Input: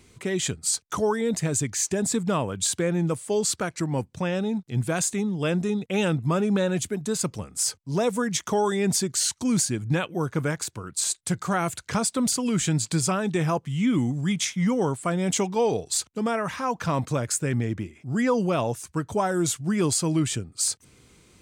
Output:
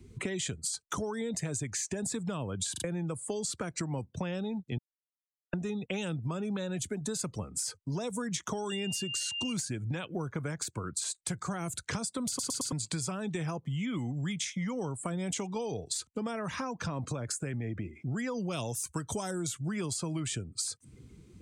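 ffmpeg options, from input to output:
ffmpeg -i in.wav -filter_complex "[0:a]asettb=1/sr,asplit=3[link_01][link_02][link_03];[link_01]atrim=end=8.704[link_04];[link_02]atrim=start=8.7:end=9.53,asetpts=PTS-STARTPTS,afade=type=in:duration=0.004:curve=qsin,afade=type=out:start_time=0.826:duration=0.004:curve=qsin,aeval=exprs='val(0)+0.0355*sin(2*PI*2800*n/s)':channel_layout=same[link_05];[link_03]atrim=start=9.526[link_06];[link_04][link_05]acrossfade=duration=0.004:curve1=hsin:curve2=qsin[link_07];[link_07][link_06]acrossfade=duration=0.004:curve1=qsin:curve2=hsin,asettb=1/sr,asplit=3[link_08][link_09][link_10];[link_08]atrim=end=16.834[link_11];[link_09]atrim=start=16.83:end=17.96,asetpts=PTS-STARTPTS,afade=type=in:duration=0.004:curve=qsin,afade=type=out:start_time=1.126:duration=0.004:curve=qsin,acompressor=threshold=-28dB:ratio=2:attack=3.2:release=140:knee=1:detection=peak[link_12];[link_10]atrim=start=17.956[link_13];[link_11][link_12]acrossfade=duration=0.004:curve1=hsin:curve2=qsin[link_14];[link_14][link_13]acrossfade=duration=0.004:curve1=qsin:curve2=hsin,asplit=3[link_15][link_16][link_17];[link_15]afade=type=out:start_time=18.5:duration=0.02[link_18];[link_16]highshelf=frequency=2400:gain=10.5,afade=type=in:start_time=18.5:duration=0.02,afade=type=out:start_time=19.3:duration=0.02[link_19];[link_17]afade=type=in:start_time=19.3:duration=0.02[link_20];[link_18][link_19][link_20]amix=inputs=3:normalize=0,asplit=10[link_21][link_22][link_23][link_24][link_25][link_26][link_27][link_28][link_29][link_30];[link_21]atrim=end=2.762[link_31];[link_22]atrim=start=2.718:end=2.762[link_32];[link_23]atrim=start=2.718:end=2.762[link_33];[link_24]atrim=start=2.838:end=4.78,asetpts=PTS-STARTPTS,afade=type=out:start_time=1.938:duration=0.004:curve=hsin[link_34];[link_25]atrim=start=4.78:end=5.53,asetpts=PTS-STARTPTS,volume=0[link_35];[link_26]atrim=start=5.53:end=12.392,asetpts=PTS-STARTPTS,afade=type=in:duration=0.004:curve=hsin[link_36];[link_27]atrim=start=12.278:end=12.392[link_37];[link_28]atrim=start=12.278:end=12.392[link_38];[link_29]atrim=start=12.278:end=12.392[link_39];[link_30]atrim=start=12.718[link_40];[link_31][link_32]acrossfade=duration=0.004:curve1=hsin:curve2=hsin[link_41];[link_41][link_33]acrossfade=duration=0.004:curve1=hsin:curve2=hsin[link_42];[link_34][link_35][link_36]concat=n=3:v=0:a=1[link_43];[link_42][link_43]acrossfade=duration=0.004:curve1=hsin:curve2=hsin[link_44];[link_44][link_37]acrossfade=duration=0.004:curve1=hsin:curve2=hsin[link_45];[link_45][link_38]acrossfade=duration=0.004:curve1=hsin:curve2=hsin[link_46];[link_46][link_39]acrossfade=duration=0.004:curve1=hsin:curve2=hsin[link_47];[link_47][link_40]acrossfade=duration=0.004:curve1=hsin:curve2=hsin,acrossover=split=150|460|3300[link_48][link_49][link_50][link_51];[link_48]acompressor=threshold=-31dB:ratio=4[link_52];[link_49]acompressor=threshold=-34dB:ratio=4[link_53];[link_50]acompressor=threshold=-35dB:ratio=4[link_54];[link_51]acompressor=threshold=-29dB:ratio=4[link_55];[link_52][link_53][link_54][link_55]amix=inputs=4:normalize=0,afftdn=noise_reduction=18:noise_floor=-48,acompressor=threshold=-41dB:ratio=4,volume=7dB" out.wav

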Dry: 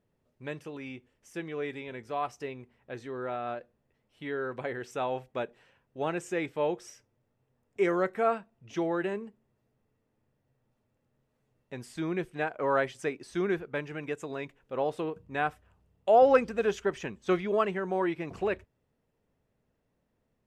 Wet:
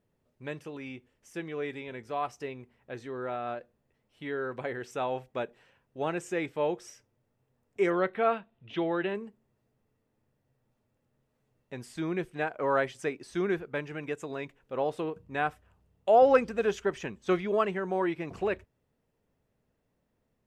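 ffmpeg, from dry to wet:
ffmpeg -i in.wav -filter_complex "[0:a]asettb=1/sr,asplit=3[link_01][link_02][link_03];[link_01]atrim=end=7.904[link_04];[link_02]atrim=start=7.9:end=9.15,asetpts=PTS-STARTPTS,afade=type=in:duration=0.004:curve=qsin,afade=type=out:start_time=1.246:duration=0.004:curve=qsin,highshelf=frequency=4700:width_type=q:width=3:gain=-10.5[link_05];[link_03]atrim=start=9.146[link_06];[link_04][link_05]acrossfade=duration=0.004:curve1=hsin:curve2=qsin[link_07];[link_07][link_06]acrossfade=duration=0.004:curve1=qsin:curve2=hsin" out.wav

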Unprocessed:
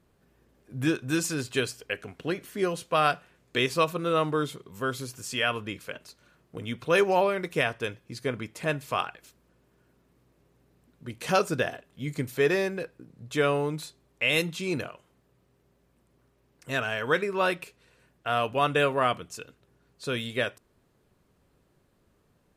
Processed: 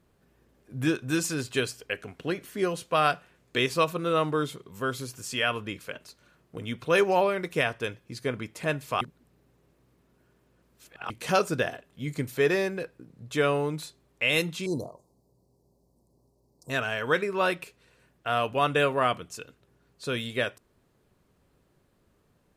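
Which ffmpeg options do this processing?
ffmpeg -i in.wav -filter_complex "[0:a]asettb=1/sr,asplit=3[link_01][link_02][link_03];[link_01]atrim=end=14.664[link_04];[link_02]atrim=start=14.66:end=16.7,asetpts=PTS-STARTPTS,afade=type=in:duration=0.004:curve=qsin,afade=type=out:start_time=2.036:duration=0.004:curve=qsin,asuperstop=centerf=2100:order=12:qfactor=0.63[link_05];[link_03]atrim=start=16.696[link_06];[link_04][link_05]acrossfade=duration=0.004:curve1=hsin:curve2=qsin[link_07];[link_07][link_06]acrossfade=duration=0.004:curve1=qsin:curve2=hsin,asplit=3[link_08][link_09][link_10];[link_08]atrim=end=9.012[link_11];[link_09]atrim=start=9.008:end=11.102,asetpts=PTS-STARTPTS,areverse[link_12];[link_10]atrim=start=11.098[link_13];[link_11][link_12]acrossfade=duration=0.004:curve1=hsin:curve2=hsin[link_14];[link_14][link_13]acrossfade=duration=0.004:curve1=hsin:curve2=hsin" out.wav

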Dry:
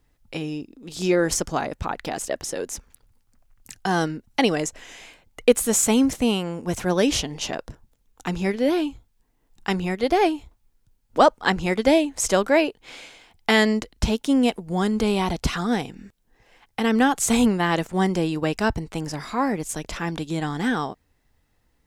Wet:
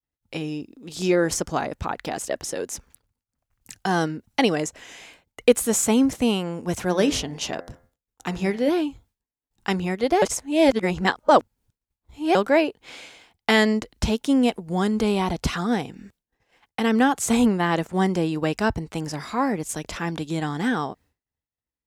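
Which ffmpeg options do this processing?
ffmpeg -i in.wav -filter_complex "[0:a]asettb=1/sr,asplit=3[link_01][link_02][link_03];[link_01]atrim=end=6.854[link_04];[link_02]atrim=start=6.85:end=8.69,asetpts=PTS-STARTPTS,afade=type=in:duration=0.004:curve=qsin,afade=type=out:start_time=1.836:duration=0.004:curve=qsin,bandreject=frequency=86.66:width_type=h:width=4,bandreject=frequency=173.32:width_type=h:width=4,bandreject=frequency=259.98:width_type=h:width=4,bandreject=frequency=346.64:width_type=h:width=4,bandreject=frequency=433.3:width_type=h:width=4,bandreject=frequency=519.96:width_type=h:width=4,bandreject=frequency=606.62:width_type=h:width=4,bandreject=frequency=693.28:width_type=h:width=4,bandreject=frequency=779.94:width_type=h:width=4,bandreject=frequency=866.6:width_type=h:width=4,bandreject=frequency=953.26:width_type=h:width=4,bandreject=frequency=1039.92:width_type=h:width=4,bandreject=frequency=1126.58:width_type=h:width=4,bandreject=frequency=1213.24:width_type=h:width=4,bandreject=frequency=1299.9:width_type=h:width=4,bandreject=frequency=1386.56:width_type=h:width=4,bandreject=frequency=1473.22:width_type=h:width=4,bandreject=frequency=1559.88:width_type=h:width=4,bandreject=frequency=1646.54:width_type=h:width=4,bandreject=frequency=1733.2:width_type=h:width=4,bandreject=frequency=1819.86:width_type=h:width=4,bandreject=frequency=1906.52:width_type=h:width=4,bandreject=frequency=1993.18:width_type=h:width=4,bandreject=frequency=2079.84:width_type=h:width=4,bandreject=frequency=2166.5:width_type=h:width=4[link_05];[link_03]atrim=start=8.686[link_06];[link_04][link_05]acrossfade=duration=0.004:curve1=hsin:curve2=qsin[link_07];[link_07][link_06]acrossfade=duration=0.004:curve1=qsin:curve2=hsin,asplit=3[link_08][link_09][link_10];[link_08]atrim=end=10.222[link_11];[link_09]atrim=start=10.218:end=12.352,asetpts=PTS-STARTPTS,areverse[link_12];[link_10]atrim=start=12.348[link_13];[link_11][link_12]acrossfade=duration=0.004:curve1=hsin:curve2=hsin[link_14];[link_14][link_13]acrossfade=duration=0.004:curve1=hsin:curve2=hsin,agate=range=-33dB:threshold=-49dB:ratio=3:detection=peak,highpass=50,adynamicequalizer=threshold=0.02:dfrequency=1900:dqfactor=0.7:tfrequency=1900:tqfactor=0.7:attack=5:release=100:ratio=0.375:range=2.5:mode=cutabove:tftype=highshelf" out.wav

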